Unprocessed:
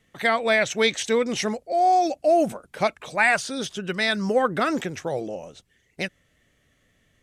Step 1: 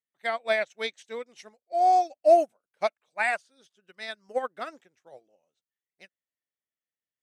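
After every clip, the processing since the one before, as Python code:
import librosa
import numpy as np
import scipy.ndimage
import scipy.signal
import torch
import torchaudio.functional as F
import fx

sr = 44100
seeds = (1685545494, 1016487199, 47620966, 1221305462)

y = fx.highpass(x, sr, hz=470.0, slope=6)
y = fx.dynamic_eq(y, sr, hz=650.0, q=2.5, threshold_db=-33.0, ratio=4.0, max_db=5)
y = fx.upward_expand(y, sr, threshold_db=-35.0, expansion=2.5)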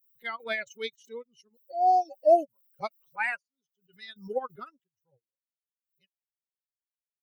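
y = fx.bin_expand(x, sr, power=2.0)
y = fx.peak_eq(y, sr, hz=7600.0, db=-13.0, octaves=0.61)
y = fx.pre_swell(y, sr, db_per_s=150.0)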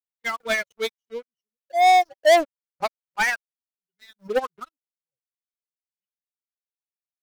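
y = scipy.signal.medfilt(x, 5)
y = fx.leveller(y, sr, passes=5)
y = fx.upward_expand(y, sr, threshold_db=-26.0, expansion=2.5)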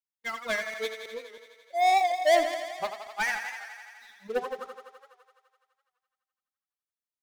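y = fx.reverse_delay(x, sr, ms=106, wet_db=-10.0)
y = fx.echo_thinned(y, sr, ms=84, feedback_pct=78, hz=280.0, wet_db=-9)
y = fx.record_warp(y, sr, rpm=78.0, depth_cents=100.0)
y = y * 10.0 ** (-7.0 / 20.0)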